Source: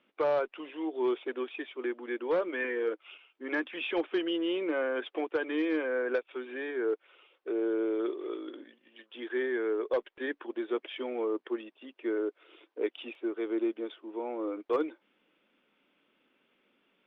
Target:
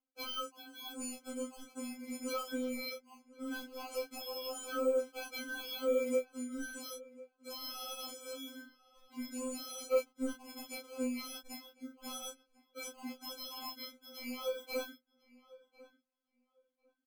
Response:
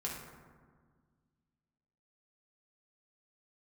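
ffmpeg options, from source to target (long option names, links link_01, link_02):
-filter_complex "[0:a]afftdn=noise_reduction=24:noise_floor=-41,acrossover=split=460[link_01][link_02];[link_02]acompressor=threshold=-50dB:ratio=2.5[link_03];[link_01][link_03]amix=inputs=2:normalize=0,aresample=16000,asoftclip=type=tanh:threshold=-31dB,aresample=44100,flanger=delay=0.3:depth=8.9:regen=-18:speed=1.3:shape=sinusoidal,acrusher=samples=24:mix=1:aa=0.000001,asplit=2[link_04][link_05];[link_05]adelay=29,volume=-4.5dB[link_06];[link_04][link_06]amix=inputs=2:normalize=0,asplit=2[link_07][link_08];[link_08]adelay=1048,lowpass=frequency=2200:poles=1,volume=-19.5dB,asplit=2[link_09][link_10];[link_10]adelay=1048,lowpass=frequency=2200:poles=1,volume=0.17[link_11];[link_09][link_11]amix=inputs=2:normalize=0[link_12];[link_07][link_12]amix=inputs=2:normalize=0,afftfilt=real='re*3.46*eq(mod(b,12),0)':imag='im*3.46*eq(mod(b,12),0)':win_size=2048:overlap=0.75,volume=5dB"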